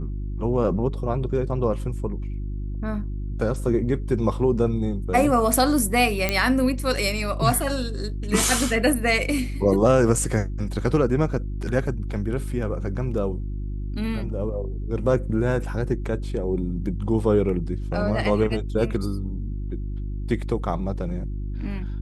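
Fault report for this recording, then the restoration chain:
hum 50 Hz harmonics 7 -29 dBFS
6.29 pop -6 dBFS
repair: de-click; de-hum 50 Hz, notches 7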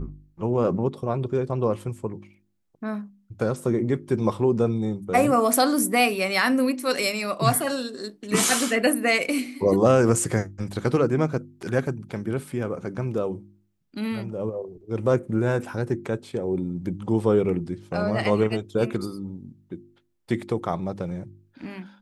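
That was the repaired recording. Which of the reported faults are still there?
none

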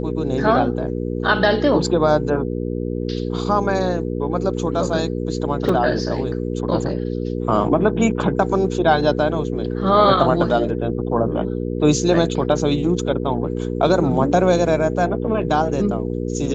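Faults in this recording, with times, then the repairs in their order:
hum 60 Hz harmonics 8 -24 dBFS
5.69 gap 3 ms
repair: de-hum 60 Hz, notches 8; interpolate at 5.69, 3 ms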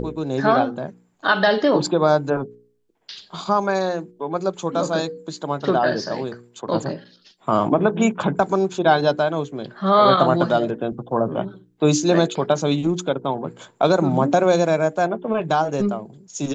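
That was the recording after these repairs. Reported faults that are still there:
none

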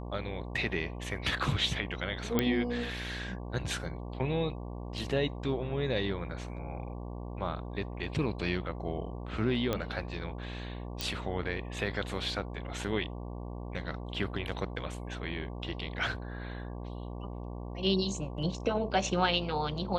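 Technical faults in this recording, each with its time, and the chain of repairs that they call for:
buzz 60 Hz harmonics 19 -40 dBFS
2.39 pop -12 dBFS
9.73 pop -16 dBFS
11.01 pop -16 dBFS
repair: de-click; de-hum 60 Hz, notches 19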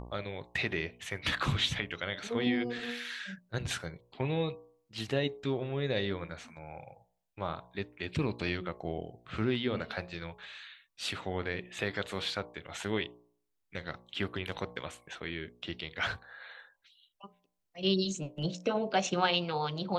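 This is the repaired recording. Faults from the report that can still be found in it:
none

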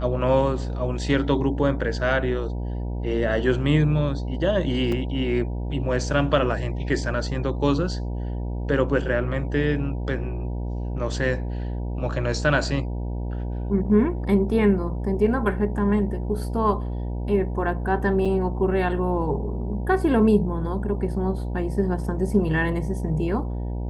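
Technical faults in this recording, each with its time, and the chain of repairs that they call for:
buzz 60 Hz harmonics 16 -28 dBFS
4.92 gap 3.6 ms
18.25–18.26 gap 5.3 ms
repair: de-hum 60 Hz, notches 16; interpolate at 4.92, 3.6 ms; interpolate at 18.25, 5.3 ms

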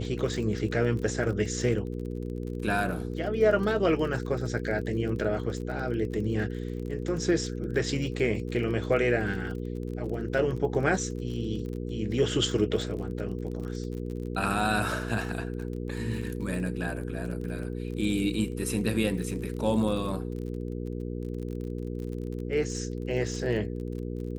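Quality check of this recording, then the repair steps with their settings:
crackle 34/s -36 dBFS
hum 60 Hz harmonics 8 -34 dBFS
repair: de-click; de-hum 60 Hz, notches 8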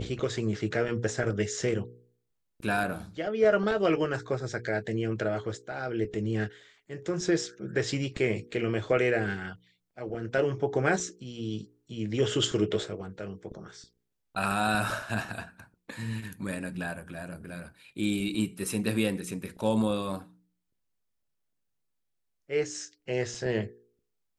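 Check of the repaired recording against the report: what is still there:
none

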